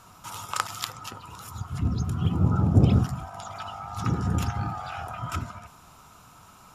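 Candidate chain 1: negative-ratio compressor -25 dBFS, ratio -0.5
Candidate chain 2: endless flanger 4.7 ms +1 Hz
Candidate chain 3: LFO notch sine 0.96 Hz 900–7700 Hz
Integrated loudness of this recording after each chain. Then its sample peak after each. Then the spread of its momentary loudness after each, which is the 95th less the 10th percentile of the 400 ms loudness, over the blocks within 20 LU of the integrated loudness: -30.0, -30.0, -27.5 LUFS; -6.0, -9.0, -6.5 dBFS; 21, 20, 20 LU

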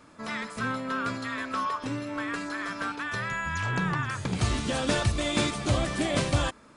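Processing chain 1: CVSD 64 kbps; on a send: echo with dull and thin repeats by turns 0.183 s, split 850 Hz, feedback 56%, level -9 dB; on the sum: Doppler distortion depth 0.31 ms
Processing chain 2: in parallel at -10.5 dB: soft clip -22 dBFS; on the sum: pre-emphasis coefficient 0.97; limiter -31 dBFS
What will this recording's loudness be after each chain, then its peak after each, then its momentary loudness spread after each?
-29.0, -41.0 LUFS; -13.0, -31.0 dBFS; 7, 5 LU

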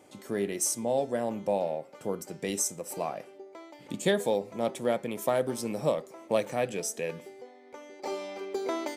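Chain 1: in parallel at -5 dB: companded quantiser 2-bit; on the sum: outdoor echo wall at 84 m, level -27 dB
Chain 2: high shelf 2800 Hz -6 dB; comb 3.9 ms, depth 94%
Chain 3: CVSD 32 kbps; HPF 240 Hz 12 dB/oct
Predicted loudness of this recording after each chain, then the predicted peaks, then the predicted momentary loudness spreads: -26.5, -29.0, -33.0 LUFS; -2.0, -11.5, -14.5 dBFS; 16, 18, 17 LU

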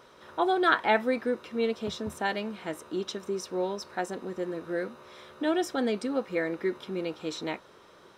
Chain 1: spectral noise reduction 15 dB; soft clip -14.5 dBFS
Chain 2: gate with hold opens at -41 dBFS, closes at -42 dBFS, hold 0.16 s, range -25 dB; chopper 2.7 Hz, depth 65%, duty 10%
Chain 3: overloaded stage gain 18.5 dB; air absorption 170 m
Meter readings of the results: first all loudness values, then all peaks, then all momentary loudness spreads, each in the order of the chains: -31.5, -37.0, -31.5 LUFS; -15.0, -16.5, -18.5 dBFS; 13, 11, 10 LU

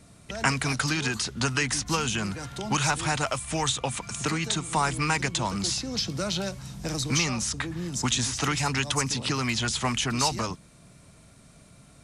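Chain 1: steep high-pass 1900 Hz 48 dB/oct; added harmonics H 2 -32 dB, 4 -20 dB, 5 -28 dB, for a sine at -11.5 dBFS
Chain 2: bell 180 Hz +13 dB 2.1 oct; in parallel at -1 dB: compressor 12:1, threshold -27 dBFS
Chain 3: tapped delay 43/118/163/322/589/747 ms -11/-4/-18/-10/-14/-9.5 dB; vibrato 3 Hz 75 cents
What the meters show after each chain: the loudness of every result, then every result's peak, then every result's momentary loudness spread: -28.5, -19.0, -25.0 LUFS; -12.0, -2.5, -6.0 dBFS; 7, 6, 6 LU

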